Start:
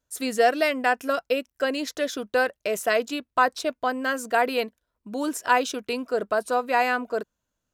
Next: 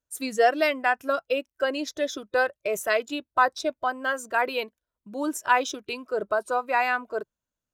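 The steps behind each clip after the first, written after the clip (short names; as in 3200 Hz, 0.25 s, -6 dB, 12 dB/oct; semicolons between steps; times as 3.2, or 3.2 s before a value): spectral noise reduction 9 dB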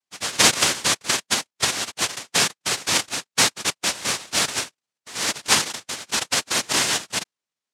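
noise vocoder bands 1; gain +2.5 dB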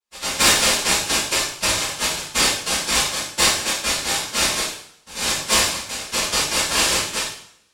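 band inversion scrambler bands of 2000 Hz; sine folder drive 5 dB, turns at -0.5 dBFS; two-slope reverb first 0.61 s, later 1.7 s, from -28 dB, DRR -8.5 dB; gain -14.5 dB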